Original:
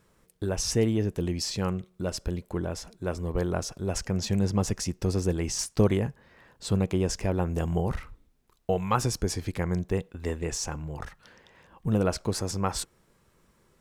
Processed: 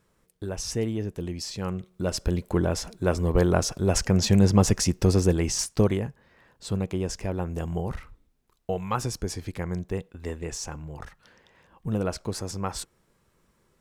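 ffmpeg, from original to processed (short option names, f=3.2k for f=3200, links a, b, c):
-af "volume=7dB,afade=t=in:st=1.59:d=0.94:silence=0.298538,afade=t=out:st=4.99:d=1.07:silence=0.334965"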